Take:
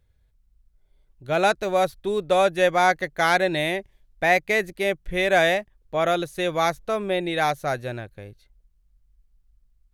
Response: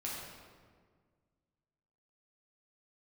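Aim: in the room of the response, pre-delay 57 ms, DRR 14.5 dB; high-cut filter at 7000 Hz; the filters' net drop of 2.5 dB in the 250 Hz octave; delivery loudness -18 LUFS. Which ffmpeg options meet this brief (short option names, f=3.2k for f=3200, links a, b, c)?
-filter_complex "[0:a]lowpass=7k,equalizer=f=250:t=o:g=-4.5,asplit=2[a][b];[1:a]atrim=start_sample=2205,adelay=57[c];[b][c]afir=irnorm=-1:irlink=0,volume=-16dB[d];[a][d]amix=inputs=2:normalize=0,volume=5dB"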